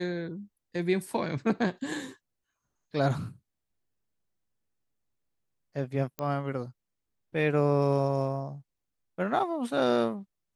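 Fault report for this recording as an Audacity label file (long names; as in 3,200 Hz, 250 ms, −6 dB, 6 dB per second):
6.190000	6.190000	click −18 dBFS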